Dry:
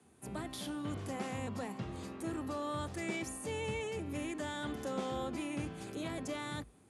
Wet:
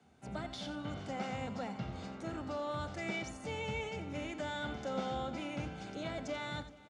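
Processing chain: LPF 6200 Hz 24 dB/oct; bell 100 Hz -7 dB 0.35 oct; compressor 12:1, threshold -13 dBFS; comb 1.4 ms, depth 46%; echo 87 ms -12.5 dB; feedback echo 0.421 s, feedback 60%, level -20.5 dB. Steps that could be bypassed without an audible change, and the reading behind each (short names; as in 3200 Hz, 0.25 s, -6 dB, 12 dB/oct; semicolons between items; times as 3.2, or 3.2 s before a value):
compressor, threshold -13 dBFS: input peak -24.5 dBFS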